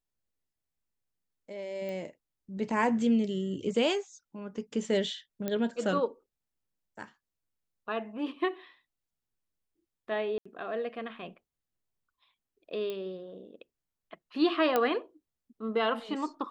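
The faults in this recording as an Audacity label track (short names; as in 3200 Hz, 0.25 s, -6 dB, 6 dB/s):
1.890000	1.890000	pop -27 dBFS
5.480000	5.480000	pop -18 dBFS
10.380000	10.460000	gap 75 ms
12.900000	12.900000	pop -24 dBFS
14.760000	14.760000	pop -13 dBFS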